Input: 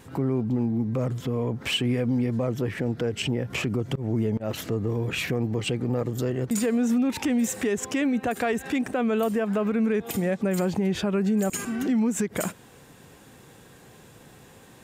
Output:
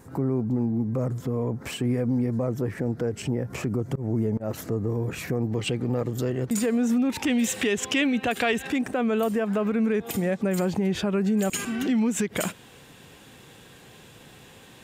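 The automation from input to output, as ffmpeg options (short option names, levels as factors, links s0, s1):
-af "asetnsamples=n=441:p=0,asendcmd='5.52 equalizer g 0;7.27 equalizer g 11.5;8.67 equalizer g 0.5;11.39 equalizer g 7.5',equalizer=f=3100:t=o:w=1.1:g=-12"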